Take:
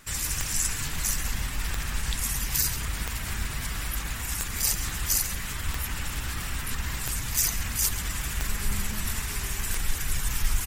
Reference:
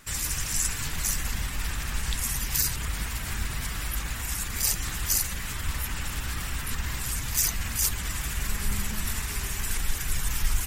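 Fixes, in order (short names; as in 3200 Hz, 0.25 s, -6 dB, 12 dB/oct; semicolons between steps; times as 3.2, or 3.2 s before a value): de-click; inverse comb 0.136 s -13.5 dB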